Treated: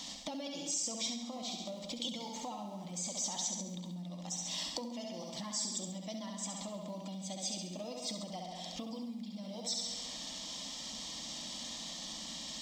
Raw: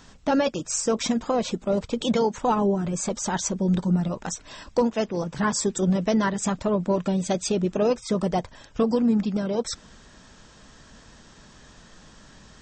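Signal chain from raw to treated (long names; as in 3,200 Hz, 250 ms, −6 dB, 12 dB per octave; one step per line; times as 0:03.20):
mu-law and A-law mismatch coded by mu
notch filter 2,600 Hz, Q 7.9
flutter between parallel walls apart 11.6 metres, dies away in 0.75 s
in parallel at +1 dB: brickwall limiter −21.5 dBFS, peak gain reduction 11.5 dB
on the sum: phaser with its sweep stopped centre 410 Hz, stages 6
on a send at −9.5 dB: convolution reverb RT60 0.80 s, pre-delay 57 ms
on the sum: downward compressor 6 to 1, threshold −31 dBFS, peak gain reduction 18.5 dB
meter weighting curve D
level −9 dB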